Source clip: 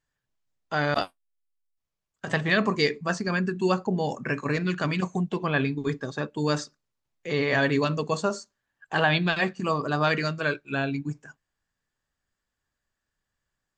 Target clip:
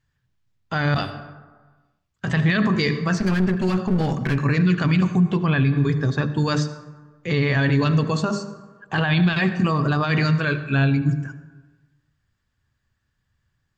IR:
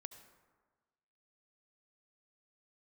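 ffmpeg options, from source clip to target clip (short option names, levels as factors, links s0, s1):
-filter_complex "[0:a]equalizer=f=100:t=o:w=1.5:g=14.5,bandreject=f=50:t=h:w=6,bandreject=f=100:t=h:w=6,bandreject=f=150:t=h:w=6,bandreject=f=200:t=h:w=6,bandreject=f=250:t=h:w=6,bandreject=f=300:t=h:w=6,bandreject=f=350:t=h:w=6,bandreject=f=400:t=h:w=6,bandreject=f=450:t=h:w=6,asplit=2[s0][s1];[1:a]atrim=start_sample=2205,lowpass=6200[s2];[s1][s2]afir=irnorm=-1:irlink=0,volume=2.51[s3];[s0][s3]amix=inputs=2:normalize=0,alimiter=limit=0.299:level=0:latency=1:release=30,equalizer=f=610:t=o:w=1.2:g=-6,asettb=1/sr,asplit=3[s4][s5][s6];[s4]atrim=end=3.174[s7];[s5]atrim=start=3.17:end=4.43,asetpts=PTS-STARTPTS,afade=t=in:d=0.004:c=qsin,afade=t=out:st=1.256:d=0.004:c=qsin,aeval=exprs='clip(val(0),-1,0.075)':c=same[s8];[s6]atrim=start=4.426[s9];[s7][s8]acrossfade=d=0.004:c1=hsin:c2=qsin[s10];[s10][s9]acrossfade=d=0.004:c1=qsin:c2=hsin"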